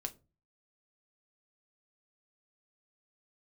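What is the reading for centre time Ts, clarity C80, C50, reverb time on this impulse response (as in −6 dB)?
5 ms, 25.5 dB, 20.0 dB, 0.30 s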